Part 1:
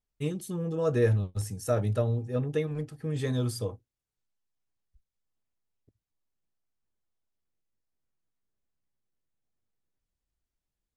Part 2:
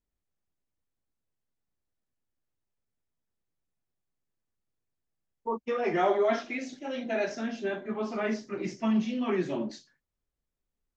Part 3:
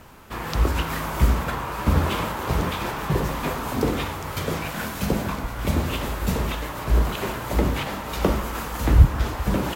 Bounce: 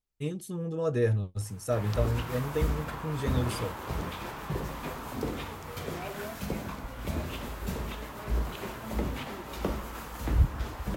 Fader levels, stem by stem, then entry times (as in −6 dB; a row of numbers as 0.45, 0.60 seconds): −2.0, −16.5, −10.5 decibels; 0.00, 0.00, 1.40 seconds